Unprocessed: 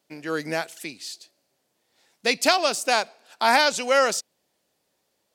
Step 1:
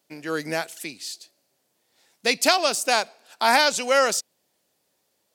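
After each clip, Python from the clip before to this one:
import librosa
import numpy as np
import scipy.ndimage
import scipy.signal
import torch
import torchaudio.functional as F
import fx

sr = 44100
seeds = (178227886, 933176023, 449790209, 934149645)

y = scipy.signal.sosfilt(scipy.signal.butter(2, 47.0, 'highpass', fs=sr, output='sos'), x)
y = fx.high_shelf(y, sr, hz=7300.0, db=5.5)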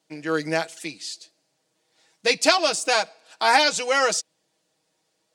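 y = scipy.signal.savgol_filter(x, 9, 4, mode='constant')
y = y + 0.73 * np.pad(y, (int(6.3 * sr / 1000.0), 0))[:len(y)]
y = y * 10.0 ** (-1.0 / 20.0)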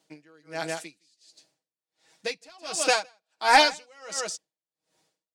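y = 10.0 ** (-7.0 / 20.0) * np.tanh(x / 10.0 ** (-7.0 / 20.0))
y = y + 10.0 ** (-11.0 / 20.0) * np.pad(y, (int(162 * sr / 1000.0), 0))[:len(y)]
y = y * 10.0 ** (-35 * (0.5 - 0.5 * np.cos(2.0 * np.pi * 1.4 * np.arange(len(y)) / sr)) / 20.0)
y = y * 10.0 ** (2.5 / 20.0)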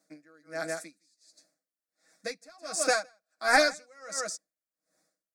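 y = fx.fixed_phaser(x, sr, hz=600.0, stages=8)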